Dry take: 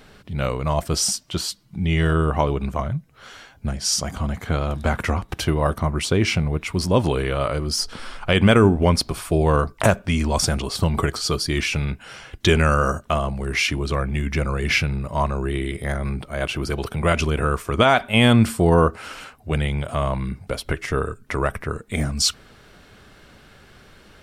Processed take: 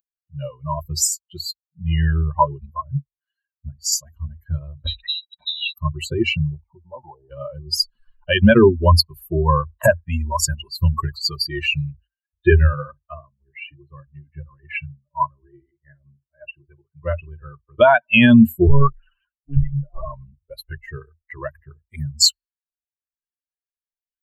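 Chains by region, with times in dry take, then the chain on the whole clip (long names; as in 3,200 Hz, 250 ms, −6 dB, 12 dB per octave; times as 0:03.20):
0:04.87–0:05.74: voice inversion scrambler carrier 3,900 Hz + tilt shelving filter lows +7.5 dB, about 680 Hz
0:06.54–0:07.31: downward compressor, threshold −25 dBFS + low-pass with resonance 810 Hz, resonance Q 5.6
0:12.07–0:17.81: low-pass filter 2,600 Hz + double-tracking delay 49 ms −11 dB + expander for the loud parts, over −27 dBFS
0:18.67–0:20.05: spectral envelope exaggerated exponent 1.5 + one-pitch LPC vocoder at 8 kHz 140 Hz
whole clip: spectral dynamics exaggerated over time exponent 3; EQ curve with evenly spaced ripples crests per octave 1.4, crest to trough 15 dB; boost into a limiter +10 dB; level −2 dB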